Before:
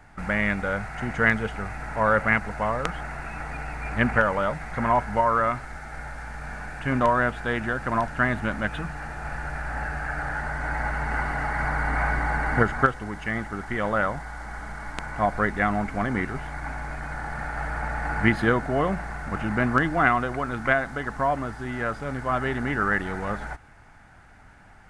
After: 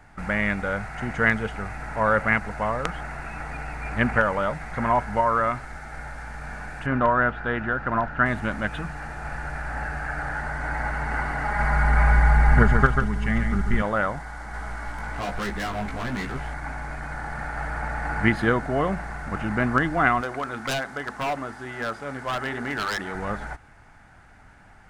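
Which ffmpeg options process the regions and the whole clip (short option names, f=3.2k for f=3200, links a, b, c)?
-filter_complex "[0:a]asettb=1/sr,asplit=3[a][b][c];[a]atrim=end=6.864[d];[b]atrim=start=6.86:end=8.26,asetpts=PTS-STARTPTS,afade=t=in:d=0.004:c=qsin,afade=t=out:st=1.396:d=0.004:c=qsin,lowpass=2.8k,equalizer=f=1.4k:w=7.4:g=6,bandreject=f=2.2k:w=15[e];[c]atrim=start=8.256[f];[d][e]acrossfade=d=0.004:c1=hsin:c2=qsin[g];[g][f]acrossfade=d=0.004:c1=qsin:c2=hsin,asettb=1/sr,asplit=3[h][i][j];[h]atrim=end=11.454[k];[i]atrim=start=11.45:end=13.82,asetpts=PTS-STARTPTS,afade=t=in:d=0.004:c=qsin,afade=t=out:st=2.366:d=0.004:c=qsin,aecho=1:1:4.9:0.5,atrim=end_sample=104517,aecho=1:1:141:0.531,atrim=end_sample=104517,asubboost=boost=7.5:cutoff=170[l];[j]atrim=start=13.816[m];[k][l]acrossfade=d=0.004:c1=hsin:c2=qsin[n];[n][m]acrossfade=d=0.004:c1=qsin:c2=hsin,asettb=1/sr,asplit=3[o][p][q];[o]atrim=end=14.524[r];[p]atrim=start=14.52:end=16.54,asetpts=PTS-STARTPTS,afade=t=in:d=0.004:c=qsin,afade=t=out:st=2.016:d=0.004:c=qsin,acontrast=21,volume=23.5dB,asoftclip=hard,volume=-23.5dB,flanger=delay=15:depth=3.1:speed=1.1[s];[q]atrim=start=16.536[t];[r][s]acrossfade=d=0.004:c1=hsin:c2=qsin[u];[u][t]acrossfade=d=0.004:c1=qsin:c2=hsin,asettb=1/sr,asplit=3[v][w][x];[v]atrim=end=20.214[y];[w]atrim=start=20.21:end=23.15,asetpts=PTS-STARTPTS,afade=t=in:d=0.004:c=qsin,afade=t=out:st=2.936:d=0.004:c=qsin,highpass=f=230:p=1,bandreject=f=50:t=h:w=6,bandreject=f=100:t=h:w=6,bandreject=f=150:t=h:w=6,bandreject=f=200:t=h:w=6,bandreject=f=250:t=h:w=6,bandreject=f=300:t=h:w=6,bandreject=f=350:t=h:w=6,bandreject=f=400:t=h:w=6,aeval=exprs='0.0944*(abs(mod(val(0)/0.0944+3,4)-2)-1)':c=same[z];[x]atrim=start=23.146[aa];[y][z]acrossfade=d=0.004:c1=hsin:c2=qsin[ab];[ab][aa]acrossfade=d=0.004:c1=qsin:c2=hsin"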